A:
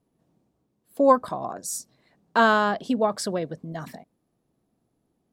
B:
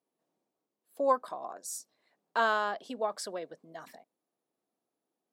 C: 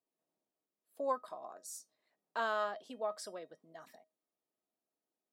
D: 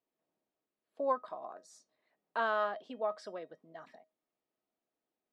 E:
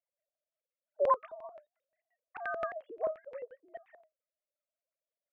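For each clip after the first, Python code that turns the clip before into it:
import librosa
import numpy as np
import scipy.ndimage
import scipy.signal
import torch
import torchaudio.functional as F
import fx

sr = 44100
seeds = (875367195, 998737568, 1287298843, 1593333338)

y1 = scipy.signal.sosfilt(scipy.signal.butter(2, 420.0, 'highpass', fs=sr, output='sos'), x)
y1 = F.gain(torch.from_numpy(y1), -8.0).numpy()
y2 = fx.comb_fb(y1, sr, f0_hz=630.0, decay_s=0.18, harmonics='all', damping=0.0, mix_pct=70)
y2 = F.gain(torch.from_numpy(y2), 1.5).numpy()
y3 = scipy.signal.sosfilt(scipy.signal.butter(2, 3200.0, 'lowpass', fs=sr, output='sos'), y2)
y3 = F.gain(torch.from_numpy(y3), 3.0).numpy()
y4 = fx.sine_speech(y3, sr)
y4 = fx.filter_lfo_lowpass(y4, sr, shape='square', hz=5.7, low_hz=470.0, high_hz=2300.0, q=2.0)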